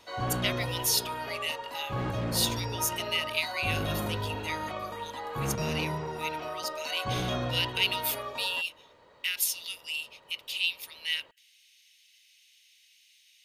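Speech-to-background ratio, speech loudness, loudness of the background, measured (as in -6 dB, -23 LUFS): 2.5 dB, -32.0 LUFS, -34.5 LUFS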